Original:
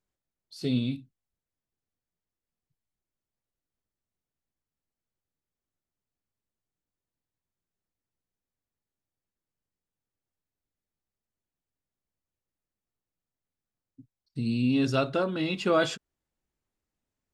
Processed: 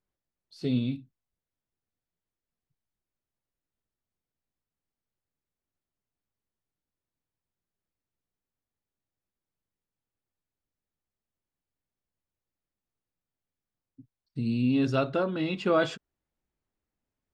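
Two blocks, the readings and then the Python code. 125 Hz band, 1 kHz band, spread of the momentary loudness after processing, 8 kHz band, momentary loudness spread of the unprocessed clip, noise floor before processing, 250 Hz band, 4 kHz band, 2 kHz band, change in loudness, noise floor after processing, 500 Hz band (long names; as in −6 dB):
0.0 dB, −0.5 dB, 12 LU, can't be measured, 12 LU, below −85 dBFS, 0.0 dB, −4.0 dB, −1.5 dB, −0.5 dB, below −85 dBFS, 0.0 dB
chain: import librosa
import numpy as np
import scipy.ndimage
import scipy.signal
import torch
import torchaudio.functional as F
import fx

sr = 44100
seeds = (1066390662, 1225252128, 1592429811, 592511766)

y = fx.lowpass(x, sr, hz=2800.0, slope=6)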